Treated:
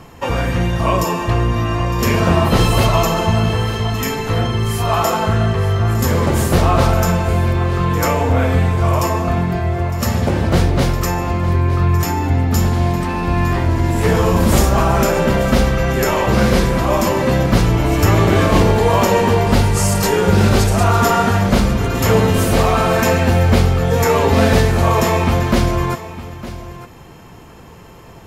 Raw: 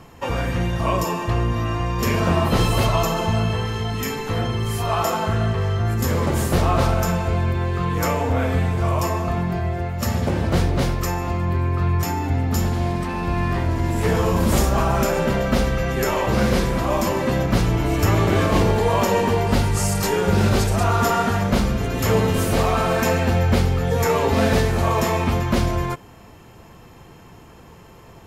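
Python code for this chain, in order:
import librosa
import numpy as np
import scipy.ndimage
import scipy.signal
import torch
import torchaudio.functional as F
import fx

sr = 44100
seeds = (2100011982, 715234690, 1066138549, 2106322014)

y = x + 10.0 ** (-15.0 / 20.0) * np.pad(x, (int(908 * sr / 1000.0), 0))[:len(x)]
y = y * librosa.db_to_amplitude(5.0)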